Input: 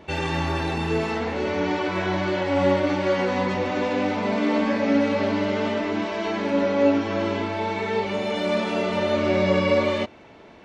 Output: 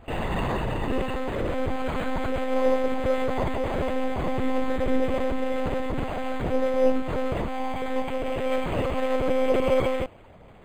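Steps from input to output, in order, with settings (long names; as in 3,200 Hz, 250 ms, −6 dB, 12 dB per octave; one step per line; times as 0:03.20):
one-pitch LPC vocoder at 8 kHz 260 Hz
linearly interpolated sample-rate reduction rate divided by 8×
level −1 dB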